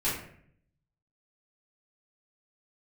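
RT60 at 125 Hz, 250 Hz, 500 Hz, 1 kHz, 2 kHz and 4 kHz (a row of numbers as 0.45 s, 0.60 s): 1.1 s, 0.85 s, 0.70 s, 0.55 s, 0.60 s, 0.40 s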